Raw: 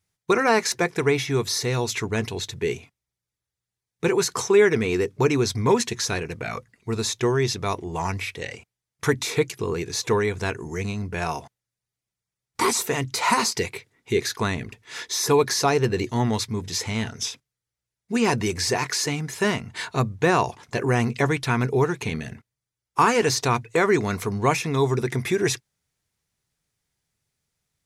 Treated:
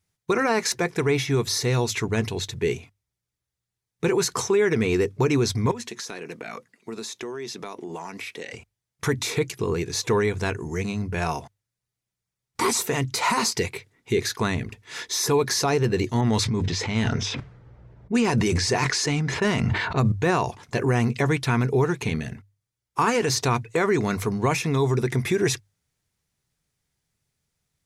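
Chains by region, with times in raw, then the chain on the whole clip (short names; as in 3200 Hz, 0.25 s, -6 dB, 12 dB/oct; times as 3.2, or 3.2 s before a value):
5.71–8.53 HPF 200 Hz 24 dB/oct + compressor 8:1, threshold -31 dBFS
16.21–20.12 LPF 12000 Hz + low-pass opened by the level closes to 810 Hz, open at -20 dBFS + sustainer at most 21 dB/s
whole clip: low shelf 250 Hz +4 dB; notches 50/100 Hz; limiter -12.5 dBFS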